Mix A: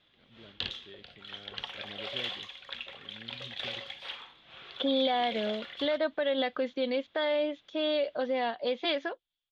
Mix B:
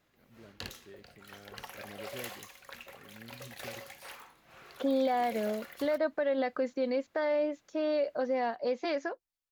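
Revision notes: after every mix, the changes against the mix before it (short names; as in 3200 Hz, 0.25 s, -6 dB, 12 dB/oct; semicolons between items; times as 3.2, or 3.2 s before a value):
master: remove synth low-pass 3400 Hz, resonance Q 8.4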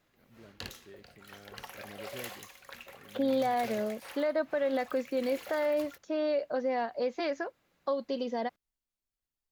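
second voice: entry -1.65 s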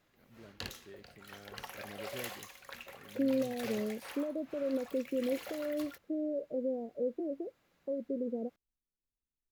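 second voice: add steep low-pass 510 Hz 36 dB/oct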